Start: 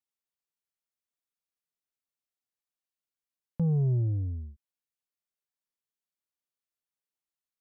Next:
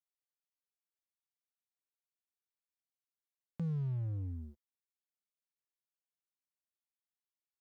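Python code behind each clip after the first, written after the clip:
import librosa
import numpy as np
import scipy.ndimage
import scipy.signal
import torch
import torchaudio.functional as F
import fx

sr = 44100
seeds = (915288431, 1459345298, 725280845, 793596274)

y = fx.highpass(x, sr, hz=320.0, slope=6)
y = fx.leveller(y, sr, passes=3)
y = y * librosa.db_to_amplitude(-5.5)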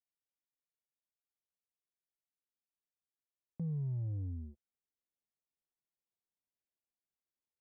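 y = fx.rider(x, sr, range_db=10, speed_s=2.0)
y = np.convolve(y, np.full(31, 1.0 / 31))[:len(y)]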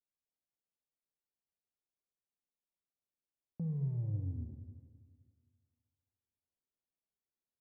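y = fx.env_lowpass(x, sr, base_hz=710.0, full_db=-37.0)
y = fx.rev_schroeder(y, sr, rt60_s=1.9, comb_ms=29, drr_db=4.5)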